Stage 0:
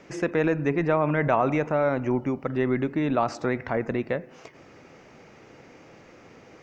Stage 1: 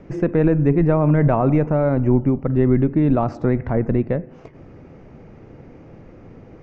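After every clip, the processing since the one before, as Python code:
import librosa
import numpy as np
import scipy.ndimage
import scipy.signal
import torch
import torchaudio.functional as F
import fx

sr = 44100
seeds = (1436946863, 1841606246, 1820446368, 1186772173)

y = fx.tilt_eq(x, sr, slope=-4.5)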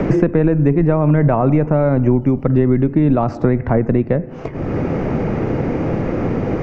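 y = fx.band_squash(x, sr, depth_pct=100)
y = y * 10.0 ** (2.5 / 20.0)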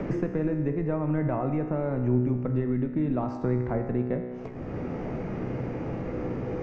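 y = fx.comb_fb(x, sr, f0_hz=62.0, decay_s=1.7, harmonics='all', damping=0.0, mix_pct=80)
y = y * 10.0 ** (-2.0 / 20.0)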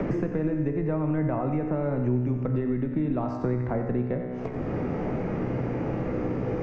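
y = x + 10.0 ** (-11.0 / 20.0) * np.pad(x, (int(90 * sr / 1000.0), 0))[:len(x)]
y = fx.band_squash(y, sr, depth_pct=70)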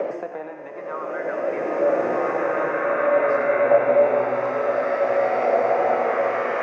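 y = fx.filter_lfo_highpass(x, sr, shape='saw_up', hz=0.55, low_hz=540.0, high_hz=2300.0, q=4.2)
y = fx.rev_bloom(y, sr, seeds[0], attack_ms=2170, drr_db=-11.0)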